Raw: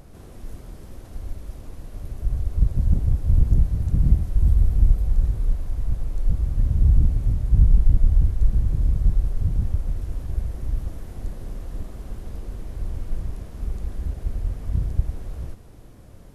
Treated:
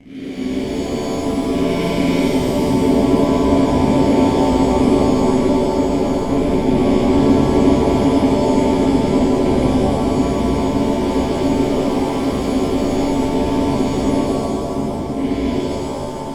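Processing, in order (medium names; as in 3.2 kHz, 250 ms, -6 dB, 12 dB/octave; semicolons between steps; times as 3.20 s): 1.52–2.24 s: sorted samples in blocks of 256 samples; 14.20–15.15 s: power-law waveshaper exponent 2; fuzz box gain 33 dB, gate -42 dBFS; vowel filter i; gate with hold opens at -42 dBFS; loudness maximiser +24 dB; pitch-shifted reverb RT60 2.2 s, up +7 st, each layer -2 dB, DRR -9.5 dB; trim -16 dB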